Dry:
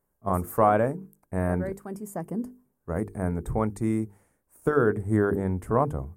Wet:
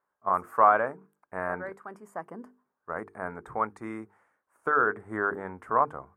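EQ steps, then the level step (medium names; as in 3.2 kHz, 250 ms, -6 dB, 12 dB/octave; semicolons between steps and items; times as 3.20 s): band-pass filter 1.3 kHz, Q 1.9; +7.0 dB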